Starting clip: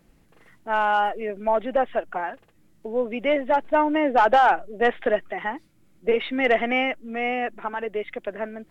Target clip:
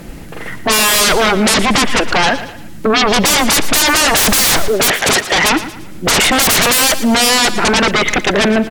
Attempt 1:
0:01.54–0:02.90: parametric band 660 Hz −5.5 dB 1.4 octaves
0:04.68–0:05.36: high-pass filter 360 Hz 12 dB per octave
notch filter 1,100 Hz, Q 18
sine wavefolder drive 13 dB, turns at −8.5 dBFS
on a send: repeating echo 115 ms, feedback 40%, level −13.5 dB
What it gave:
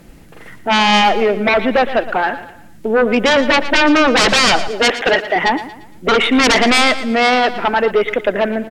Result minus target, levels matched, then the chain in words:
sine wavefolder: distortion −16 dB
0:01.54–0:02.90: parametric band 660 Hz −5.5 dB 1.4 octaves
0:04.68–0:05.36: high-pass filter 360 Hz 12 dB per octave
notch filter 1,100 Hz, Q 18
sine wavefolder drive 24 dB, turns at −8.5 dBFS
on a send: repeating echo 115 ms, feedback 40%, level −13.5 dB

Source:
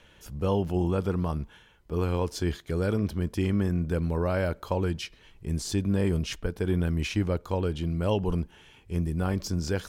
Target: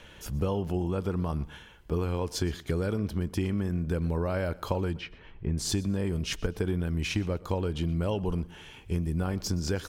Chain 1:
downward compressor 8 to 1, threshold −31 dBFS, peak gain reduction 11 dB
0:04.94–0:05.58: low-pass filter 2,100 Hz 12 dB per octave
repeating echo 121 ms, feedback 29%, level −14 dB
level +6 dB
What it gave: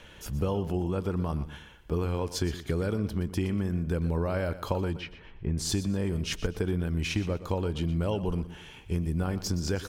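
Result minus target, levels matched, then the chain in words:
echo-to-direct +7 dB
downward compressor 8 to 1, threshold −31 dBFS, peak gain reduction 11 dB
0:04.94–0:05.58: low-pass filter 2,100 Hz 12 dB per octave
repeating echo 121 ms, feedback 29%, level −21 dB
level +6 dB

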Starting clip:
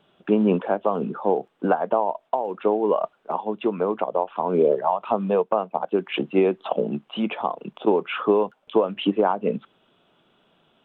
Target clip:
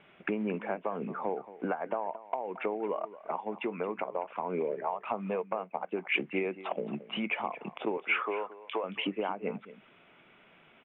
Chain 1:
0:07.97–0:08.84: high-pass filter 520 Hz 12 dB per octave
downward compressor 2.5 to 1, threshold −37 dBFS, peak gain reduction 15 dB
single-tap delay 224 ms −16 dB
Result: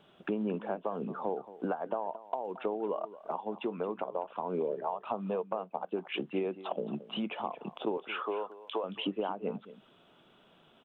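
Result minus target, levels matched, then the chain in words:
2,000 Hz band −8.0 dB
0:07.97–0:08.84: high-pass filter 520 Hz 12 dB per octave
downward compressor 2.5 to 1, threshold −37 dBFS, peak gain reduction 15 dB
low-pass with resonance 2,200 Hz, resonance Q 6.2
single-tap delay 224 ms −16 dB

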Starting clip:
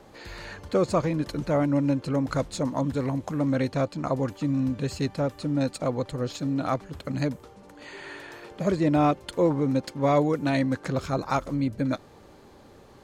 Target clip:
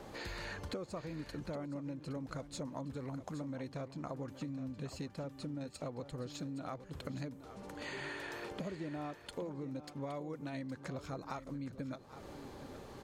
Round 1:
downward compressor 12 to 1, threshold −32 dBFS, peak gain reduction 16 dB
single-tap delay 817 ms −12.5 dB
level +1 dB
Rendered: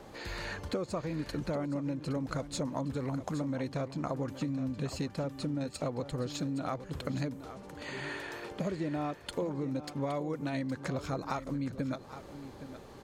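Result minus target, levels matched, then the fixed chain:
downward compressor: peak gain reduction −8 dB
downward compressor 12 to 1, threshold −40.5 dBFS, peak gain reduction 23.5 dB
single-tap delay 817 ms −12.5 dB
level +1 dB

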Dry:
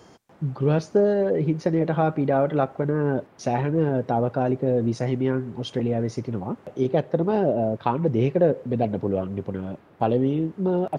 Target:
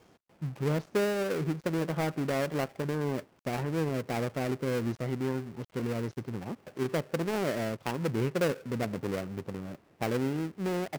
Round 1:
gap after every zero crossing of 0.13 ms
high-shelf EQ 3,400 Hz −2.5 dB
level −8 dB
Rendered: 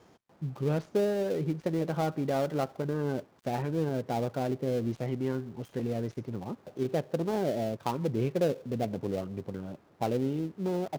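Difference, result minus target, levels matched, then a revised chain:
gap after every zero crossing: distortion −11 dB
gap after every zero crossing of 0.33 ms
high-shelf EQ 3,400 Hz −2.5 dB
level −8 dB

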